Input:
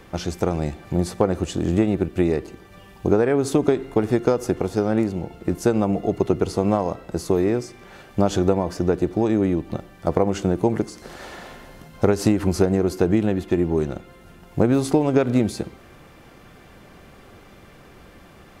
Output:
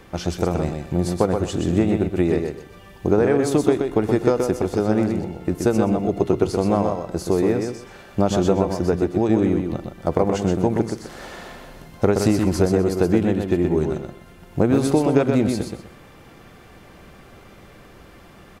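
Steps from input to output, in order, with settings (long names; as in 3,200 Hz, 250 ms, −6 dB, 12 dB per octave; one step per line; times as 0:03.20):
repeating echo 125 ms, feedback 23%, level −5 dB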